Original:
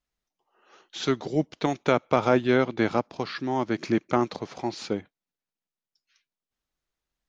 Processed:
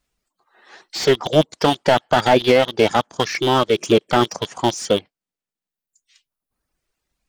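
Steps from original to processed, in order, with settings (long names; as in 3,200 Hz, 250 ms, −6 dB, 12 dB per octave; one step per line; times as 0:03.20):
loose part that buzzes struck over −34 dBFS, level −19 dBFS
reverb reduction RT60 1.2 s
in parallel at −0.5 dB: brickwall limiter −17.5 dBFS, peak gain reduction 10 dB
on the sum: formants moved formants +5 semitones
slew-rate limiting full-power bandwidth 180 Hz
level +6 dB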